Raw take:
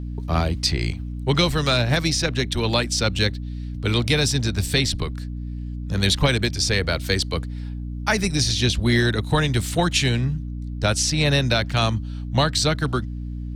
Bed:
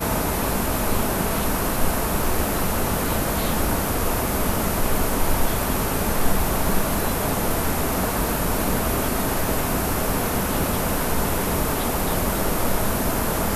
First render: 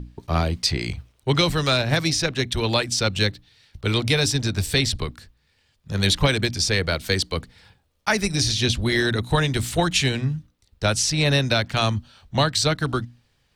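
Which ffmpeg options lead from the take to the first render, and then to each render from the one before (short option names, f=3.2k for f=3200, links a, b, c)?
-af "bandreject=f=60:t=h:w=6,bandreject=f=120:t=h:w=6,bandreject=f=180:t=h:w=6,bandreject=f=240:t=h:w=6,bandreject=f=300:t=h:w=6"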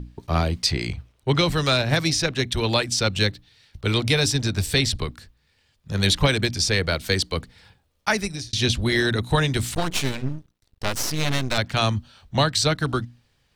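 -filter_complex "[0:a]asettb=1/sr,asplit=3[a][b][c];[a]atrim=end=0.874[d];[b]atrim=start=0.87:end=1.52,asetpts=PTS-STARTPTS,afade=t=in:d=0.004:c=qsin,afade=t=out:st=0.646:d=0.004:c=qsin,highshelf=f=4.5k:g=-5.5[e];[c]atrim=start=1.516[f];[d][e]acrossfade=d=0.004:c1=hsin:c2=qsin[g];[g][f]acrossfade=d=0.004:c1=qsin:c2=hsin,asettb=1/sr,asplit=3[h][i][j];[h]atrim=end=9.744[k];[i]atrim=start=9.74:end=11.58,asetpts=PTS-STARTPTS,afade=t=in:d=0.004:c=qsin,afade=t=out:st=1.836:d=0.004:c=qsin,aeval=exprs='max(val(0),0)':c=same[l];[j]atrim=start=11.576[m];[k][l]acrossfade=d=0.004:c1=hsin:c2=qsin[n];[n][m]acrossfade=d=0.004:c1=qsin:c2=hsin,asplit=2[o][p];[o]atrim=end=8.53,asetpts=PTS-STARTPTS,afade=t=out:st=8.08:d=0.45[q];[p]atrim=start=8.53,asetpts=PTS-STARTPTS,afade=t=in:d=0.004:c=hsin[r];[q][r]concat=n=2:v=0:a=1"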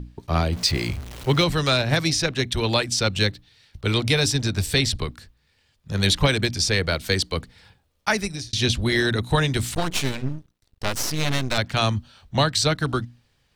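-filter_complex "[0:a]asettb=1/sr,asplit=3[a][b][c];[a]atrim=end=0.524[d];[b]atrim=start=0.52:end=1.44,asetpts=PTS-STARTPTS,afade=t=in:d=0.004:c=qsin,afade=t=out:st=0.916:d=0.004:c=qsin,aeval=exprs='val(0)+0.5*0.0251*sgn(val(0))':c=same[e];[c]atrim=start=1.436[f];[d][e]acrossfade=d=0.004:c1=hsin:c2=qsin[g];[g][f]acrossfade=d=0.004:c1=qsin:c2=hsin"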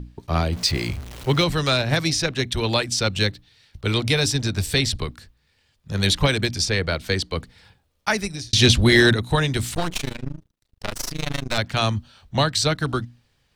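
-filter_complex "[0:a]asettb=1/sr,asplit=3[a][b][c];[a]atrim=end=6.654[d];[b]atrim=start=6.65:end=7.39,asetpts=PTS-STARTPTS,afade=t=in:d=0.004:c=qsin,afade=t=out:st=0.736:d=0.004:c=qsin,highshelf=f=5.9k:g=-8[e];[c]atrim=start=7.386[f];[d][e]acrossfade=d=0.004:c1=hsin:c2=qsin[g];[g][f]acrossfade=d=0.004:c1=qsin:c2=hsin,asettb=1/sr,asplit=3[h][i][j];[h]atrim=end=8.534[k];[i]atrim=start=8.53:end=9.14,asetpts=PTS-STARTPTS,afade=t=in:d=0.004:c=qsin,afade=t=out:st=0.606:d=0.004:c=qsin,acontrast=89[l];[j]atrim=start=9.136[m];[k][l]acrossfade=d=0.004:c1=hsin:c2=qsin[n];[n][m]acrossfade=d=0.004:c1=qsin:c2=hsin,asplit=3[o][p][q];[o]afade=t=out:st=9.93:d=0.02[r];[p]tremolo=f=26:d=0.947,afade=t=in:st=9.93:d=0.02,afade=t=out:st=11.5:d=0.02[s];[q]afade=t=in:st=11.5:d=0.02[t];[r][s][t]amix=inputs=3:normalize=0"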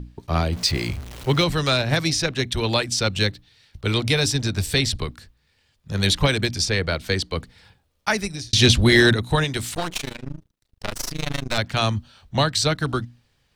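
-filter_complex "[0:a]asettb=1/sr,asplit=3[a][b][c];[a]atrim=end=9.444[d];[b]atrim=start=9.44:end=10.28,asetpts=PTS-STARTPTS,afade=t=in:d=0.004:c=qsin,afade=t=out:st=0.836:d=0.004:c=qsin,lowshelf=f=230:g=-7[e];[c]atrim=start=10.276[f];[d][e]acrossfade=d=0.004:c1=hsin:c2=qsin[g];[g][f]acrossfade=d=0.004:c1=qsin:c2=hsin"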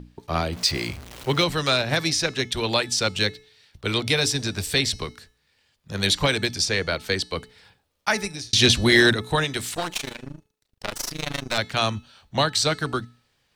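-af "lowshelf=f=160:g=-10,bandreject=f=431.9:t=h:w=4,bandreject=f=863.8:t=h:w=4,bandreject=f=1.2957k:t=h:w=4,bandreject=f=1.7276k:t=h:w=4,bandreject=f=2.1595k:t=h:w=4,bandreject=f=2.5914k:t=h:w=4,bandreject=f=3.0233k:t=h:w=4,bandreject=f=3.4552k:t=h:w=4,bandreject=f=3.8871k:t=h:w=4,bandreject=f=4.319k:t=h:w=4,bandreject=f=4.7509k:t=h:w=4,bandreject=f=5.1828k:t=h:w=4,bandreject=f=5.6147k:t=h:w=4,bandreject=f=6.0466k:t=h:w=4,bandreject=f=6.4785k:t=h:w=4,bandreject=f=6.9104k:t=h:w=4,bandreject=f=7.3423k:t=h:w=4,bandreject=f=7.7742k:t=h:w=4,bandreject=f=8.2061k:t=h:w=4,bandreject=f=8.638k:t=h:w=4,bandreject=f=9.0699k:t=h:w=4,bandreject=f=9.5018k:t=h:w=4,bandreject=f=9.9337k:t=h:w=4,bandreject=f=10.3656k:t=h:w=4,bandreject=f=10.7975k:t=h:w=4,bandreject=f=11.2294k:t=h:w=4,bandreject=f=11.6613k:t=h:w=4,bandreject=f=12.0932k:t=h:w=4,bandreject=f=12.5251k:t=h:w=4,bandreject=f=12.957k:t=h:w=4,bandreject=f=13.3889k:t=h:w=4,bandreject=f=13.8208k:t=h:w=4,bandreject=f=14.2527k:t=h:w=4,bandreject=f=14.6846k:t=h:w=4,bandreject=f=15.1165k:t=h:w=4,bandreject=f=15.5484k:t=h:w=4,bandreject=f=15.9803k:t=h:w=4,bandreject=f=16.4122k:t=h:w=4,bandreject=f=16.8441k:t=h:w=4"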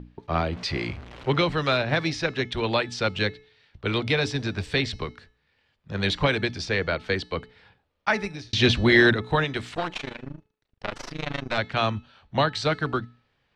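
-af "lowpass=2.8k"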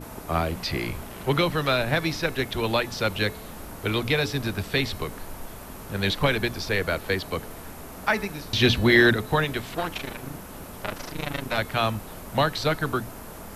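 -filter_complex "[1:a]volume=-17.5dB[a];[0:a][a]amix=inputs=2:normalize=0"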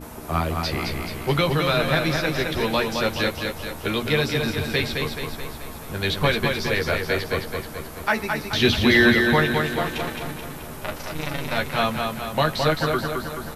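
-filter_complex "[0:a]asplit=2[a][b];[b]adelay=13,volume=-6dB[c];[a][c]amix=inputs=2:normalize=0,asplit=2[d][e];[e]aecho=0:1:215|430|645|860|1075|1290|1505:0.596|0.328|0.18|0.0991|0.0545|0.03|0.0165[f];[d][f]amix=inputs=2:normalize=0"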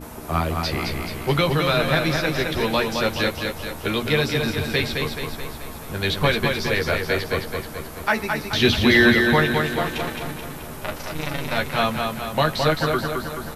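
-af "volume=1dB"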